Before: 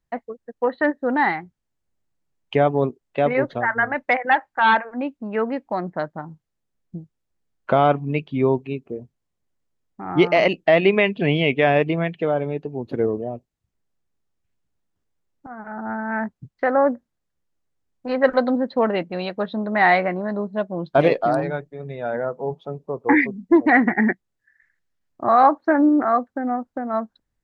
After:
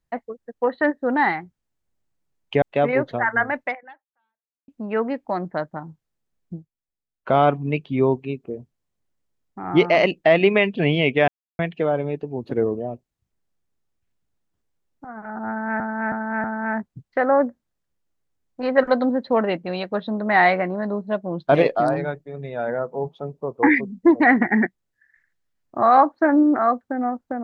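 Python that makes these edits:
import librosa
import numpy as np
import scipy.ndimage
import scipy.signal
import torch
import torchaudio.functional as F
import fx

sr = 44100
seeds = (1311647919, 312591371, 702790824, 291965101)

y = fx.edit(x, sr, fx.cut(start_s=2.62, length_s=0.42),
    fx.fade_out_span(start_s=4.04, length_s=1.06, curve='exp'),
    fx.fade_down_up(start_s=6.98, length_s=0.79, db=-14.5, fade_s=0.13),
    fx.silence(start_s=11.7, length_s=0.31),
    fx.repeat(start_s=15.9, length_s=0.32, count=4), tone=tone)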